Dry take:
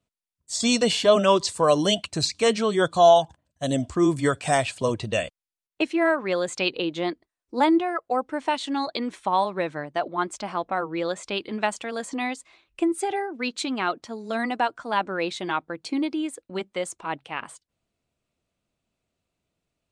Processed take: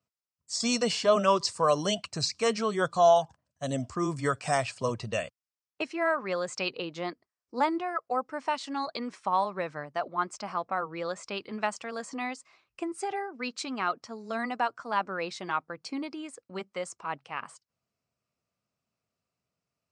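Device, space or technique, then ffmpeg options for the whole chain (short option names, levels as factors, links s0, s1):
car door speaker: -af "highpass=93,equalizer=f=120:t=q:w=4:g=3,equalizer=f=320:t=q:w=4:g=-7,equalizer=f=1200:t=q:w=4:g=6,equalizer=f=3500:t=q:w=4:g=-7,equalizer=f=5200:t=q:w=4:g=7,lowpass=f=8800:w=0.5412,lowpass=f=8800:w=1.3066,volume=0.531"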